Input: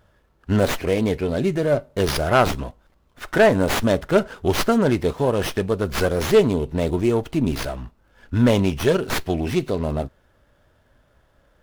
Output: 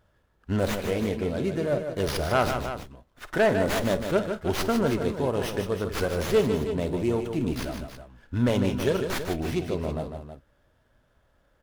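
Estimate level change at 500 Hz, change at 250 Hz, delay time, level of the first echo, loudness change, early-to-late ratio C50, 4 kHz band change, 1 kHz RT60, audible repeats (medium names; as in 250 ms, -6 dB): -5.5 dB, -6.0 dB, 51 ms, -15.5 dB, -6.0 dB, no reverb, -6.0 dB, no reverb, 3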